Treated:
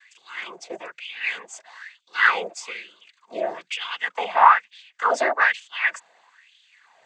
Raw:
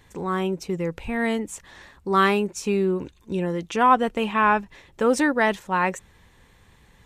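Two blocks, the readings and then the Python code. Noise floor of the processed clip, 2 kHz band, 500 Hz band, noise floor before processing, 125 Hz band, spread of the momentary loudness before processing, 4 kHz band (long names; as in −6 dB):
−68 dBFS, +4.5 dB, −6.0 dB, −56 dBFS, below −25 dB, 10 LU, +3.0 dB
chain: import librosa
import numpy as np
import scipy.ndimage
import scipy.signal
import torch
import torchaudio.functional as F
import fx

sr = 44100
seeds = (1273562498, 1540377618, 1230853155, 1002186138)

y = fx.noise_vocoder(x, sr, seeds[0], bands=16)
y = fx.filter_lfo_highpass(y, sr, shape='sine', hz=1.1, low_hz=640.0, high_hz=3300.0, q=5.2)
y = F.gain(torch.from_numpy(y), -1.5).numpy()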